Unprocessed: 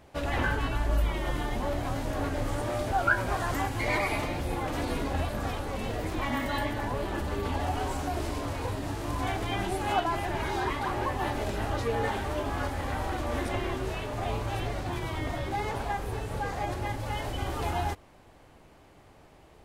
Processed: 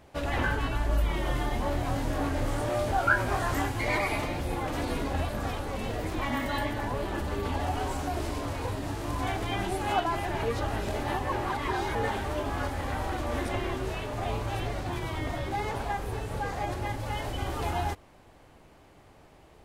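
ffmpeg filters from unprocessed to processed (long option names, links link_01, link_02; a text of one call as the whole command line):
ffmpeg -i in.wav -filter_complex "[0:a]asettb=1/sr,asplit=3[link_01][link_02][link_03];[link_01]atrim=end=1.074[link_04];[link_02]atrim=start=1.07:end=3.72,asetpts=PTS-STARTPTS,afade=type=in:duration=0.004:curve=qsin,afade=type=out:start_time=2.646:duration=0.004:curve=qsin,asplit=2[link_05][link_06];[link_06]adelay=25,volume=-5dB[link_07];[link_05][link_07]amix=inputs=2:normalize=0,atrim=end_sample=116865[link_08];[link_03]atrim=start=3.716[link_09];[link_04][link_08]acrossfade=duration=0.004:curve1=hsin:curve2=qsin[link_10];[link_10][link_09]acrossfade=duration=0.004:curve1=qsin:curve2=hsin,asplit=3[link_11][link_12][link_13];[link_11]atrim=end=10.432[link_14];[link_12]atrim=start=10.428:end=11.952,asetpts=PTS-STARTPTS,areverse[link_15];[link_13]atrim=start=11.948[link_16];[link_14][link_15]acrossfade=duration=0.004:curve1=hsin:curve2=hsin[link_17];[link_17][link_16]acrossfade=duration=0.004:curve1=hsin:curve2=hsin" out.wav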